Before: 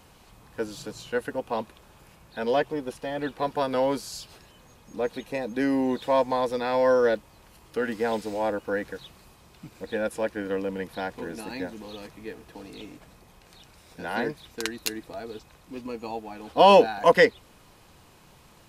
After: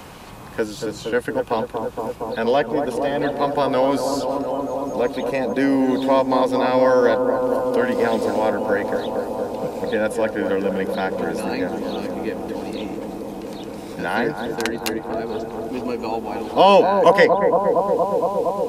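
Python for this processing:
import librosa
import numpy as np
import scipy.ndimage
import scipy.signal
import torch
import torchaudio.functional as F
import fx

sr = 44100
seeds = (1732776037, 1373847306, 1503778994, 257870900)

y = fx.echo_bbd(x, sr, ms=232, stages=2048, feedback_pct=84, wet_db=-7.5)
y = fx.band_squash(y, sr, depth_pct=40)
y = y * librosa.db_to_amplitude(6.0)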